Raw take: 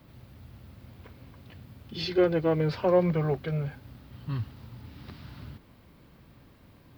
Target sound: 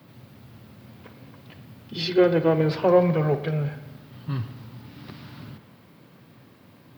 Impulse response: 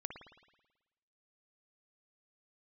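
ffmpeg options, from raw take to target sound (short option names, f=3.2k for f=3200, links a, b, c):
-filter_complex "[0:a]highpass=f=110:w=0.5412,highpass=f=110:w=1.3066,asplit=2[a][b];[1:a]atrim=start_sample=2205[c];[b][c]afir=irnorm=-1:irlink=0,volume=1dB[d];[a][d]amix=inputs=2:normalize=0"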